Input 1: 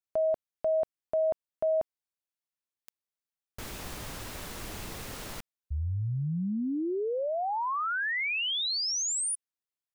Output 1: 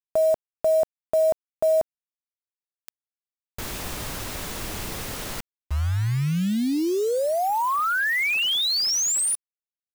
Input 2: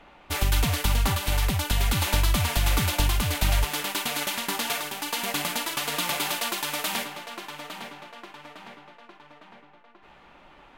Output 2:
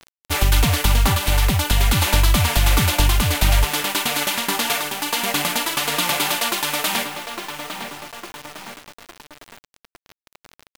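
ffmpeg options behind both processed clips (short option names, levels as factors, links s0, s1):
-af "acontrast=84,acrusher=bits=5:mix=0:aa=0.000001"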